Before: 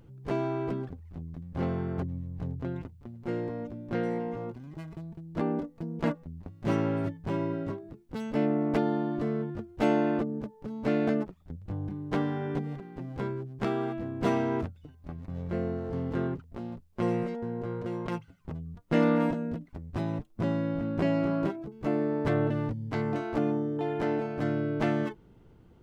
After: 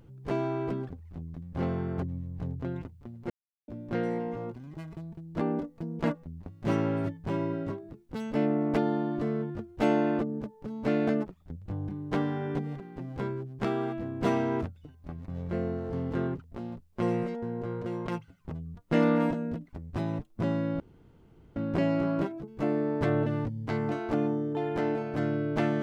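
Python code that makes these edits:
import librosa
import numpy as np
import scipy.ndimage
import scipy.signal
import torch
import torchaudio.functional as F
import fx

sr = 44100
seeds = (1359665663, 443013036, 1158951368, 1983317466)

y = fx.edit(x, sr, fx.silence(start_s=3.3, length_s=0.38),
    fx.insert_room_tone(at_s=20.8, length_s=0.76), tone=tone)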